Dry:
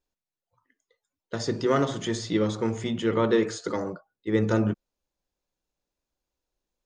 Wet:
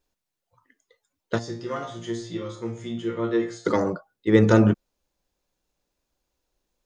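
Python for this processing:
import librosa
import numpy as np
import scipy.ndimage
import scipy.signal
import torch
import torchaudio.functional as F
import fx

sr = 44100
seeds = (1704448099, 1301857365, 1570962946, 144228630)

y = fx.resonator_bank(x, sr, root=46, chord='fifth', decay_s=0.35, at=(1.38, 3.65), fade=0.02)
y = F.gain(torch.from_numpy(y), 7.0).numpy()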